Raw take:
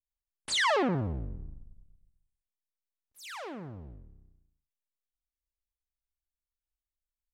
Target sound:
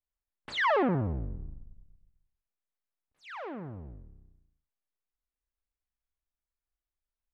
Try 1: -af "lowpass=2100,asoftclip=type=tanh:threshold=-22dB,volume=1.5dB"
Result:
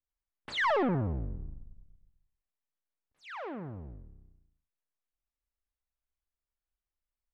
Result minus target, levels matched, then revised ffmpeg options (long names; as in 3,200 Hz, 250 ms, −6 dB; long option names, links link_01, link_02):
soft clipping: distortion +20 dB
-af "lowpass=2100,asoftclip=type=tanh:threshold=-10.5dB,volume=1.5dB"